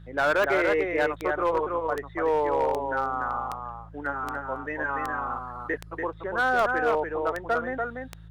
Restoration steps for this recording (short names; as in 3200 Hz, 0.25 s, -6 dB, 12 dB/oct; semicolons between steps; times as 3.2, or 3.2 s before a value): clip repair -17.5 dBFS; de-click; de-hum 54.6 Hz, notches 3; inverse comb 0.289 s -4.5 dB